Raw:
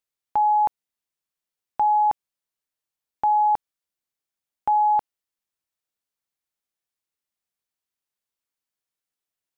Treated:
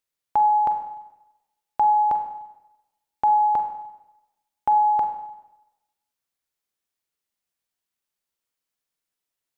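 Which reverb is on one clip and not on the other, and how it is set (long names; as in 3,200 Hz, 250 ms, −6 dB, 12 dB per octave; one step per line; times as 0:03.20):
four-comb reverb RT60 0.97 s, combs from 33 ms, DRR 5 dB
level +1.5 dB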